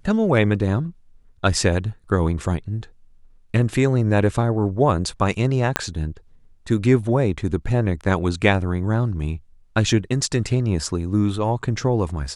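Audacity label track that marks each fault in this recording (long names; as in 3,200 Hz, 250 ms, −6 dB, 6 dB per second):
5.760000	5.760000	click −2 dBFS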